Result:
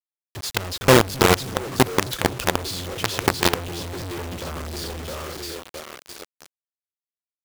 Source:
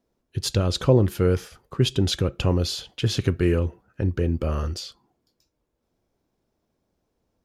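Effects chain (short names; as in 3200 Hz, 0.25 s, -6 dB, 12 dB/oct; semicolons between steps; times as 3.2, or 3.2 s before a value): spectral repair 1.66–2.09, 1900–11000 Hz before; split-band echo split 340 Hz, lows 0.263 s, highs 0.662 s, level -7 dB; companded quantiser 2-bit; low shelf 270 Hz -5.5 dB; gain -2.5 dB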